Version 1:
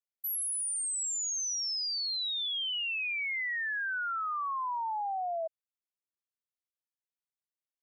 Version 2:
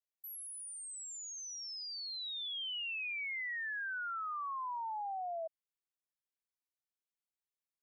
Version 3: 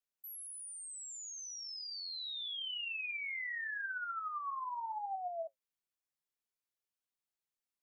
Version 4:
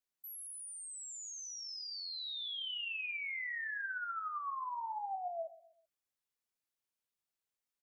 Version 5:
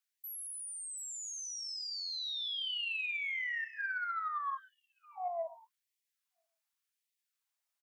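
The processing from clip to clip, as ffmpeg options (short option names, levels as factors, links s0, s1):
-filter_complex "[0:a]acrossover=split=3400[s0][s1];[s1]acompressor=threshold=0.01:ratio=4:attack=1:release=60[s2];[s0][s2]amix=inputs=2:normalize=0,volume=0.501"
-af "flanger=delay=3.7:depth=8.9:regen=59:speed=0.78:shape=triangular,volume=1.5"
-af "aecho=1:1:128|256|384:0.133|0.0533|0.0213"
-af "aecho=1:1:737:0.0841,asoftclip=type=tanh:threshold=0.0501,afftfilt=real='re*gte(b*sr/1024,530*pow(1800/530,0.5+0.5*sin(2*PI*0.88*pts/sr)))':imag='im*gte(b*sr/1024,530*pow(1800/530,0.5+0.5*sin(2*PI*0.88*pts/sr)))':win_size=1024:overlap=0.75,volume=1.5"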